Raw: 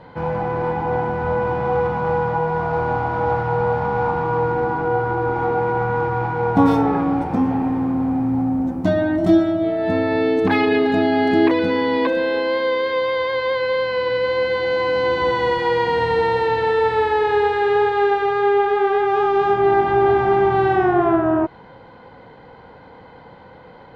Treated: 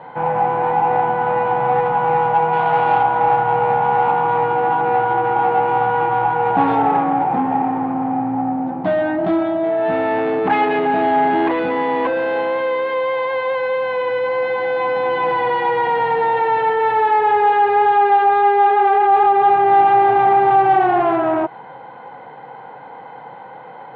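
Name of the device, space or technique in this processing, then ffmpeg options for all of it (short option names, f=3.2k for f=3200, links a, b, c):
overdrive pedal into a guitar cabinet: -filter_complex "[0:a]asplit=2[a][b];[b]highpass=f=720:p=1,volume=20dB,asoftclip=type=tanh:threshold=-3.5dB[c];[a][c]amix=inputs=2:normalize=0,lowpass=f=2.1k:p=1,volume=-6dB,highpass=76,equalizer=f=84:t=q:w=4:g=-9,equalizer=f=140:t=q:w=4:g=8,equalizer=f=800:t=q:w=4:g=9,lowpass=f=3.5k:w=0.5412,lowpass=f=3.5k:w=1.3066,asettb=1/sr,asplit=3[d][e][f];[d]atrim=end=2.534[g];[e]atrim=start=2.53:end=3.03,asetpts=PTS-STARTPTS,afade=t=in:d=0.004:c=qsin,afade=t=out:st=0.496:d=0.004:c=qsin,highshelf=f=3.1k:g=12[h];[f]atrim=start=3.026[i];[g][h]acrossfade=d=0.004:c1=hsin:c2=qsin[j];[j][i]acrossfade=d=0.004:c1=qsin:c2=hsin,volume=-7dB"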